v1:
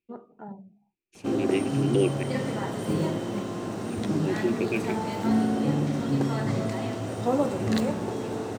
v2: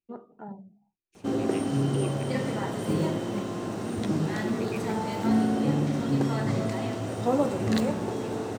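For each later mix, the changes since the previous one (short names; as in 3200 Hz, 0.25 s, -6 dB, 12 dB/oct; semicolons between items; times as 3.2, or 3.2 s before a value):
second voice -9.0 dB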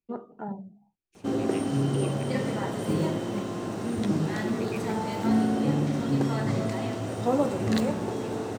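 first voice +5.5 dB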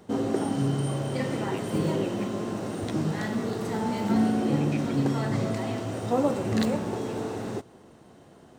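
background: entry -1.15 s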